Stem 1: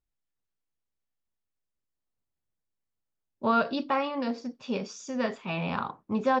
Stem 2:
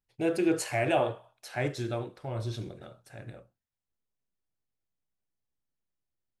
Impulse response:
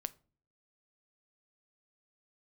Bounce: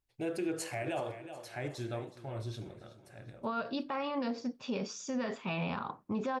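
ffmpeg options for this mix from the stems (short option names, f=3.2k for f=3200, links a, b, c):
-filter_complex "[0:a]volume=-1.5dB,asplit=2[a][b];[b]volume=-13.5dB[c];[1:a]volume=-5.5dB,asplit=3[d][e][f];[e]volume=-16dB[g];[f]apad=whole_len=282256[h];[a][h]sidechaincompress=threshold=-51dB:ratio=8:attack=5.6:release=1370[i];[2:a]atrim=start_sample=2205[j];[c][j]afir=irnorm=-1:irlink=0[k];[g]aecho=0:1:371|742|1113|1484|1855|2226:1|0.44|0.194|0.0852|0.0375|0.0165[l];[i][d][k][l]amix=inputs=4:normalize=0,alimiter=level_in=2.5dB:limit=-24dB:level=0:latency=1:release=72,volume=-2.5dB"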